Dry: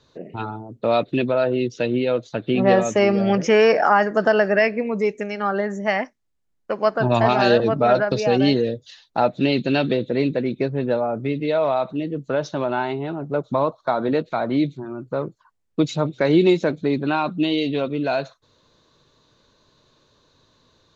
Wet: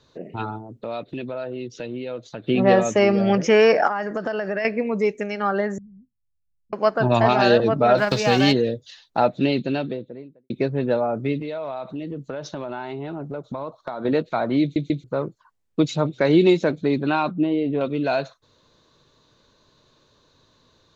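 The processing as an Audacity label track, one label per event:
0.580000	2.440000	downward compressor 2 to 1, threshold −35 dBFS
3.870000	4.650000	downward compressor 5 to 1, threshold −22 dBFS
5.780000	6.730000	inverse Chebyshev low-pass filter stop band from 620 Hz, stop band 70 dB
7.970000	8.510000	spectral envelope flattened exponent 0.6
9.200000	10.500000	fade out and dull
11.400000	14.050000	downward compressor 5 to 1, threshold −27 dBFS
14.620000	14.620000	stutter in place 0.14 s, 3 plays
17.310000	17.810000	low-pass filter 1,300 Hz

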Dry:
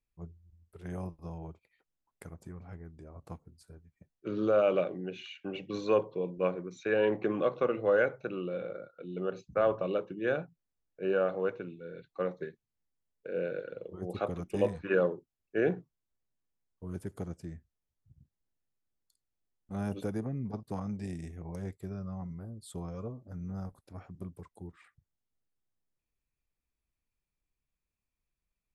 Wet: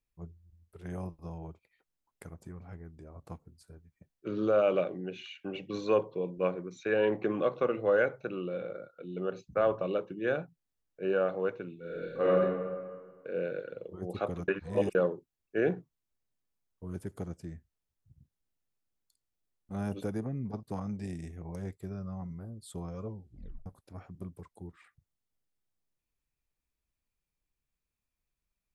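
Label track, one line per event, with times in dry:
11.790000	12.310000	thrown reverb, RT60 1.7 s, DRR −9 dB
14.480000	14.950000	reverse
23.040000	23.040000	tape stop 0.62 s

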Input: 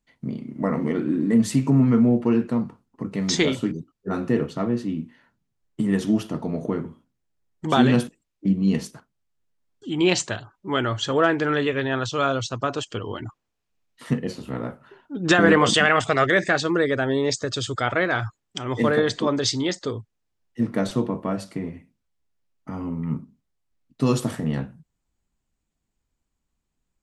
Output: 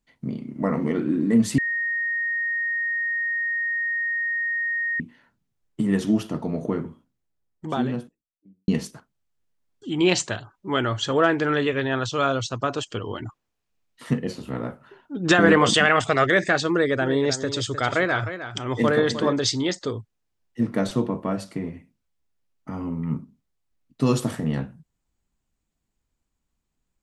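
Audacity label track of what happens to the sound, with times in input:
1.580000	5.000000	beep over 1,860 Hz −22.5 dBFS
6.790000	8.680000	fade out and dull
16.700000	19.330000	single-tap delay 308 ms −11 dB

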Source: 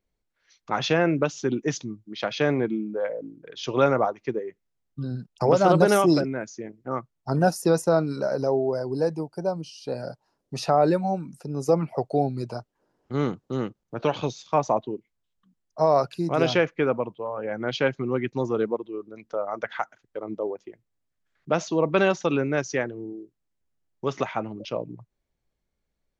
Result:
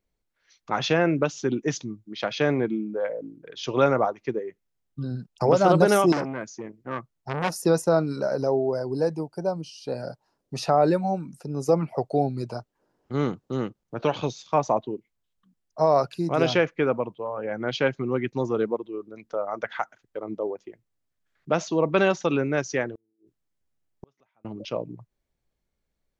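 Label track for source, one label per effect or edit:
6.120000	7.530000	saturating transformer saturates under 1,600 Hz
22.950000	24.450000	gate with flip shuts at −30 dBFS, range −40 dB

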